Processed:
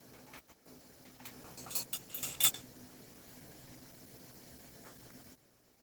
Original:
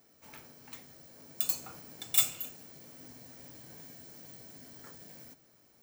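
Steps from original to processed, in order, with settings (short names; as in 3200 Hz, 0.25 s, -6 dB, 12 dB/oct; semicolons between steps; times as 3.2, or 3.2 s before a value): slices in reverse order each 0.131 s, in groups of 5; doubler 16 ms -8 dB; Opus 16 kbps 48000 Hz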